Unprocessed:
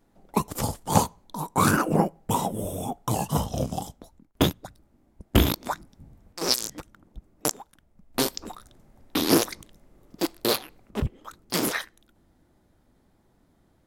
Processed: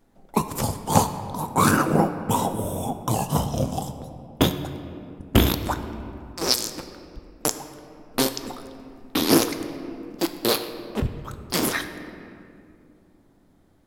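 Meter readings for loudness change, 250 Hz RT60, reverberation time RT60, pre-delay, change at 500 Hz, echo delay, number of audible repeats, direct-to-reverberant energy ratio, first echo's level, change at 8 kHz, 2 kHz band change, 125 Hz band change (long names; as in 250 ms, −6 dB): +2.0 dB, 3.5 s, 2.5 s, 4 ms, +2.5 dB, no echo audible, no echo audible, 8.0 dB, no echo audible, +2.0 dB, +2.5 dB, +2.5 dB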